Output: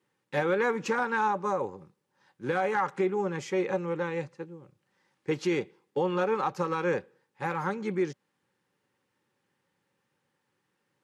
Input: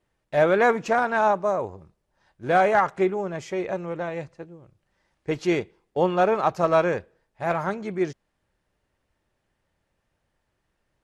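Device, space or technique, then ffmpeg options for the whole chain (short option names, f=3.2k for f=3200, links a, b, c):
PA system with an anti-feedback notch: -af "highpass=f=130:w=0.5412,highpass=f=130:w=1.3066,asuperstop=centerf=660:order=12:qfactor=4.3,alimiter=limit=-18.5dB:level=0:latency=1:release=184"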